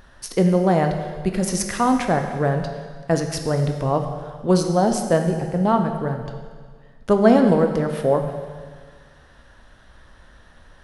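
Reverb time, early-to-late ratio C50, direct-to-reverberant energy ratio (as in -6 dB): 1.7 s, 6.5 dB, 4.5 dB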